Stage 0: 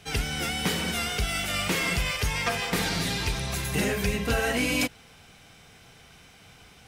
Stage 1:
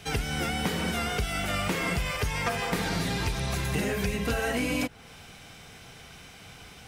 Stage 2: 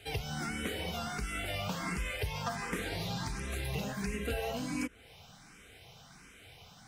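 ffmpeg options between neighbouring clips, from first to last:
ffmpeg -i in.wav -filter_complex "[0:a]acrossover=split=1800|7100[link_01][link_02][link_03];[link_01]acompressor=threshold=-31dB:ratio=4[link_04];[link_02]acompressor=threshold=-43dB:ratio=4[link_05];[link_03]acompressor=threshold=-50dB:ratio=4[link_06];[link_04][link_05][link_06]amix=inputs=3:normalize=0,volume=4.5dB" out.wav
ffmpeg -i in.wav -filter_complex "[0:a]asplit=2[link_01][link_02];[link_02]afreqshift=1.4[link_03];[link_01][link_03]amix=inputs=2:normalize=1,volume=-4.5dB" out.wav

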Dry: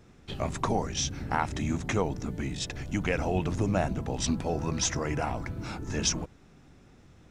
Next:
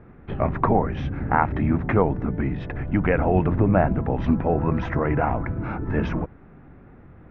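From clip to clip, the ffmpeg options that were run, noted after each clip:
ffmpeg -i in.wav -af "lowpass=frequency=1900:width=0.5412,lowpass=frequency=1900:width=1.3066,volume=8.5dB" out.wav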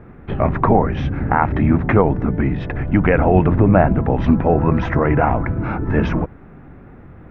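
ffmpeg -i in.wav -af "alimiter=level_in=7.5dB:limit=-1dB:release=50:level=0:latency=1,volume=-1dB" out.wav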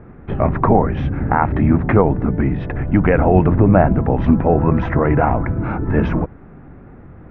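ffmpeg -i in.wav -af "lowpass=frequency=2000:poles=1,volume=1dB" out.wav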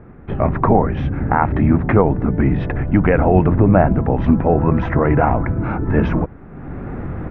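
ffmpeg -i in.wav -af "dynaudnorm=framelen=260:gausssize=3:maxgain=15dB,volume=-1dB" out.wav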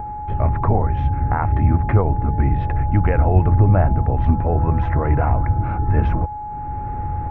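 ffmpeg -i in.wav -af "lowshelf=frequency=130:width_type=q:width=1.5:gain=9,acompressor=mode=upward:threshold=-21dB:ratio=2.5,aeval=exprs='val(0)+0.1*sin(2*PI*840*n/s)':channel_layout=same,volume=-7dB" out.wav

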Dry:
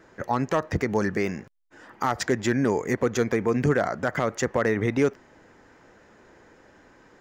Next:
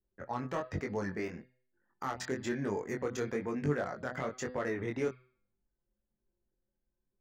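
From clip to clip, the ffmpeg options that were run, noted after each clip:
ffmpeg -i in.wav -af "anlmdn=1.58,bandreject=frequency=126.2:width_type=h:width=4,bandreject=frequency=252.4:width_type=h:width=4,bandreject=frequency=378.6:width_type=h:width=4,bandreject=frequency=504.8:width_type=h:width=4,bandreject=frequency=631:width_type=h:width=4,bandreject=frequency=757.2:width_type=h:width=4,bandreject=frequency=883.4:width_type=h:width=4,bandreject=frequency=1009.6:width_type=h:width=4,bandreject=frequency=1135.8:width_type=h:width=4,bandreject=frequency=1262:width_type=h:width=4,bandreject=frequency=1388.2:width_type=h:width=4,bandreject=frequency=1514.4:width_type=h:width=4,bandreject=frequency=1640.6:width_type=h:width=4,bandreject=frequency=1766.8:width_type=h:width=4,bandreject=frequency=1893:width_type=h:width=4,bandreject=frequency=2019.2:width_type=h:width=4,bandreject=frequency=2145.4:width_type=h:width=4,bandreject=frequency=2271.6:width_type=h:width=4,bandreject=frequency=2397.8:width_type=h:width=4,bandreject=frequency=2524:width_type=h:width=4,bandreject=frequency=2650.2:width_type=h:width=4,bandreject=frequency=2776.4:width_type=h:width=4,bandreject=frequency=2902.6:width_type=h:width=4,bandreject=frequency=3028.8:width_type=h:width=4,bandreject=frequency=3155:width_type=h:width=4,bandreject=frequency=3281.2:width_type=h:width=4,bandreject=frequency=3407.4:width_type=h:width=4,bandreject=frequency=3533.6:width_type=h:width=4,bandreject=frequency=3659.8:width_type=h:width=4,bandreject=frequency=3786:width_type=h:width=4,bandreject=frequency=3912.2:width_type=h:width=4,bandreject=frequency=4038.4:width_type=h:width=4,bandreject=frequency=4164.6:width_type=h:width=4,bandreject=frequency=4290.8:width_type=h:width=4,bandreject=frequency=4417:width_type=h:width=4,bandreject=frequency=4543.2:width_type=h:width=4,bandreject=frequency=4669.4:width_type=h:width=4,bandreject=frequency=4795.6:width_type=h:width=4,flanger=delay=20:depth=3.7:speed=1.1,volume=-8dB" out.wav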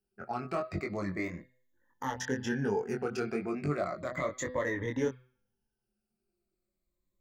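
ffmpeg -i in.wav -af "afftfilt=real='re*pow(10,14/40*sin(2*PI*(1.1*log(max(b,1)*sr/1024/100)/log(2)-(-0.34)*(pts-256)/sr)))':imag='im*pow(10,14/40*sin(2*PI*(1.1*log(max(b,1)*sr/1024/100)/log(2)-(-0.34)*(pts-256)/sr)))':win_size=1024:overlap=0.75" out.wav

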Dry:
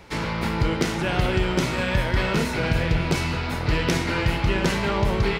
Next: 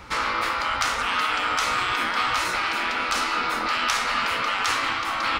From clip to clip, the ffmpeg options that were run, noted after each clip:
ffmpeg -i in.wav -af "afftfilt=real='re*lt(hypot(re,im),0.141)':imag='im*lt(hypot(re,im),0.141)':win_size=1024:overlap=0.75,equalizer=frequency=160:width_type=o:width=0.33:gain=-9,equalizer=frequency=400:width_type=o:width=0.33:gain=-8,equalizer=frequency=630:width_type=o:width=0.33:gain=-5,equalizer=frequency=1250:width_type=o:width=0.33:gain=11,equalizer=frequency=12500:width_type=o:width=0.33:gain=-5,volume=4dB" out.wav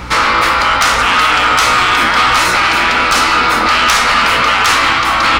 ffmpeg -i in.wav -af "aeval=exprs='val(0)+0.00562*(sin(2*PI*60*n/s)+sin(2*PI*2*60*n/s)/2+sin(2*PI*3*60*n/s)/3+sin(2*PI*4*60*n/s)/4+sin(2*PI*5*60*n/s)/5)':channel_layout=same,aeval=exprs='0.501*(cos(1*acos(clip(val(0)/0.501,-1,1)))-cos(1*PI/2))+0.224*(cos(5*acos(clip(val(0)/0.501,-1,1)))-cos(5*PI/2))':channel_layout=same,acontrast=29" out.wav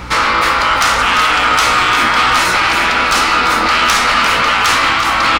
ffmpeg -i in.wav -af "aecho=1:1:345:0.299,volume=-1.5dB" out.wav

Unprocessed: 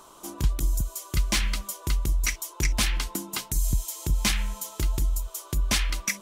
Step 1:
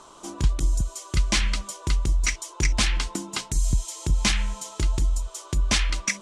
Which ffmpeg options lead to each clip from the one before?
ffmpeg -i in.wav -af "lowpass=frequency=8600:width=0.5412,lowpass=frequency=8600:width=1.3066,volume=2.5dB" out.wav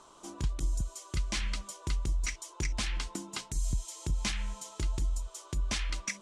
ffmpeg -i in.wav -af "alimiter=limit=-14dB:level=0:latency=1:release=187,volume=-8dB" out.wav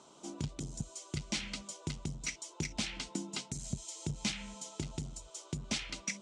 ffmpeg -i in.wav -af "volume=27dB,asoftclip=hard,volume=-27dB,highpass=120,equalizer=frequency=160:width_type=q:width=4:gain=7,equalizer=frequency=240:width_type=q:width=4:gain=5,equalizer=frequency=1100:width_type=q:width=4:gain=-9,equalizer=frequency=1700:width_type=q:width=4:gain=-7,lowpass=frequency=8700:width=0.5412,lowpass=frequency=8700:width=1.3066" out.wav

